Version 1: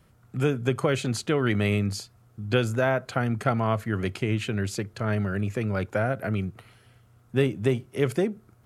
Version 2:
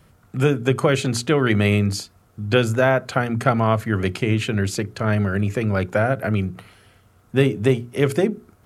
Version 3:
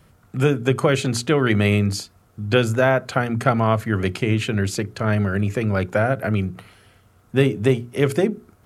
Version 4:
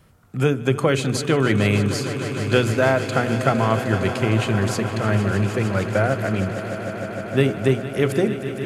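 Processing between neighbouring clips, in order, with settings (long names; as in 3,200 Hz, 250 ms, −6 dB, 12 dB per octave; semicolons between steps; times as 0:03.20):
mains-hum notches 60/120/180/240/300/360/420 Hz; level +6.5 dB
no processing that can be heard
echo that builds up and dies away 153 ms, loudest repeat 5, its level −14 dB; level −1 dB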